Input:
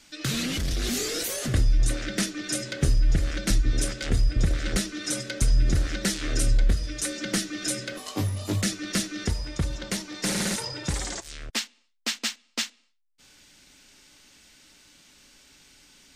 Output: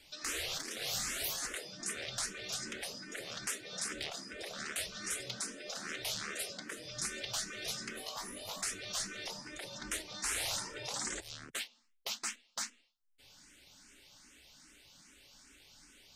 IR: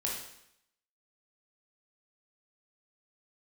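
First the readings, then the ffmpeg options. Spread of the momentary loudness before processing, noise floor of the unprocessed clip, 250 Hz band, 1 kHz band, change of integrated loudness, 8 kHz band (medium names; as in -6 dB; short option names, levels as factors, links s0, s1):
7 LU, -64 dBFS, -20.0 dB, -6.0 dB, -11.0 dB, -7.0 dB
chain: -filter_complex "[0:a]afftfilt=real='re*lt(hypot(re,im),0.0708)':imag='im*lt(hypot(re,im),0.0708)':win_size=1024:overlap=0.75,asplit=2[s0][s1];[s1]afreqshift=2.5[s2];[s0][s2]amix=inputs=2:normalize=1,volume=0.794"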